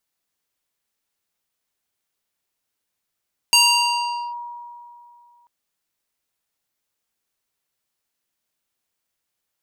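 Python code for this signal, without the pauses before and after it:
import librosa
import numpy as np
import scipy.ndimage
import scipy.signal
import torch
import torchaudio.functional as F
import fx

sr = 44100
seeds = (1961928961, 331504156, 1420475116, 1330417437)

y = fx.fm2(sr, length_s=1.94, level_db=-9.5, carrier_hz=956.0, ratio=3.91, index=1.9, index_s=0.81, decay_s=2.6, shape='linear')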